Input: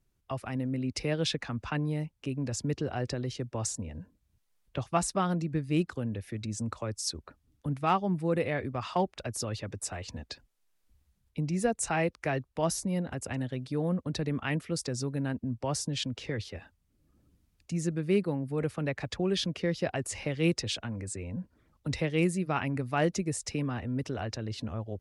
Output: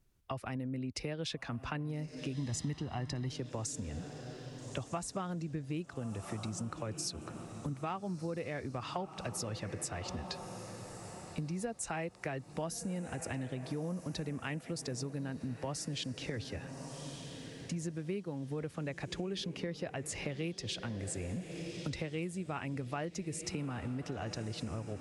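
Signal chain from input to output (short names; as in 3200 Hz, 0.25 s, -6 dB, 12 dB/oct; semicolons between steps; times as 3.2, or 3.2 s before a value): on a send: diffused feedback echo 1.259 s, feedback 46%, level -15 dB; on the sum: compressor 6:1, threshold -37 dBFS, peak gain reduction 15 dB; 2.35–3.29 comb 1 ms, depth 62%; gain +1.5 dB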